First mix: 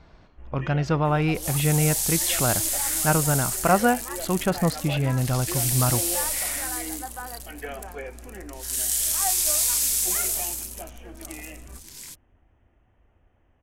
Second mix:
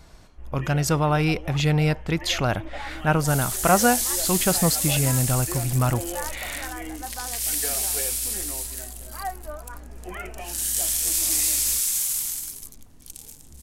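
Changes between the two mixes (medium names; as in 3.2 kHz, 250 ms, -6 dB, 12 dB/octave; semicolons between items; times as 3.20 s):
speech: remove distance through air 220 m; second sound: entry +1.85 s; master: add bass shelf 65 Hz +5.5 dB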